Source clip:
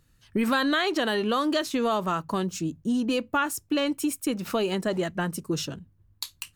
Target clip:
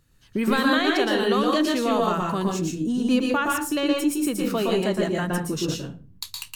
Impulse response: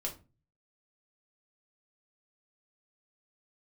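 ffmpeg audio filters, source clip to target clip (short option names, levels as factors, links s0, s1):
-filter_complex "[0:a]asplit=2[s0][s1];[1:a]atrim=start_sample=2205,asetrate=35721,aresample=44100,adelay=116[s2];[s1][s2]afir=irnorm=-1:irlink=0,volume=0.794[s3];[s0][s3]amix=inputs=2:normalize=0"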